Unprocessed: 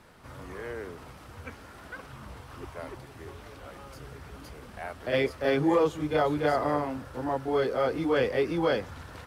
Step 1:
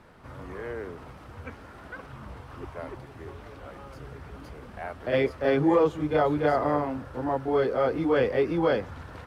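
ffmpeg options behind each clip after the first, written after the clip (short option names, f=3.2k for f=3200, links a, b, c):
-af "highshelf=f=3.4k:g=-11,volume=2.5dB"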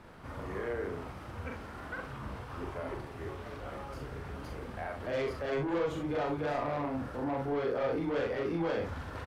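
-filter_complex "[0:a]asoftclip=type=tanh:threshold=-24dB,alimiter=level_in=6.5dB:limit=-24dB:level=0:latency=1,volume=-6.5dB,asplit=2[a][b];[b]aecho=0:1:42|66:0.596|0.376[c];[a][c]amix=inputs=2:normalize=0"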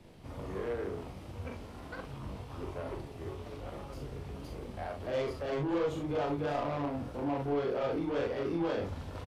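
-filter_complex "[0:a]acrossover=split=200|2000[a][b][c];[b]adynamicsmooth=sensitivity=5:basefreq=540[d];[a][d][c]amix=inputs=3:normalize=0,asplit=2[e][f];[f]adelay=21,volume=-11.5dB[g];[e][g]amix=inputs=2:normalize=0,aresample=32000,aresample=44100"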